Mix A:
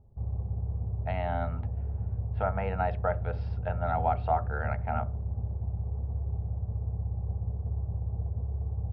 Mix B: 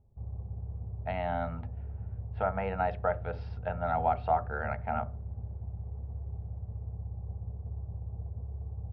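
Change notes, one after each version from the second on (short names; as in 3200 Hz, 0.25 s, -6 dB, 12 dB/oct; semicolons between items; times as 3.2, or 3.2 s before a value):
background -6.5 dB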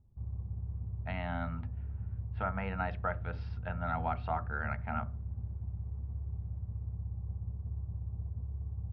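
master: add band shelf 580 Hz -9 dB 1.3 oct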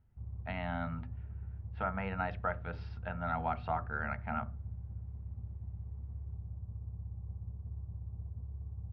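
speech: entry -0.60 s; background -4.0 dB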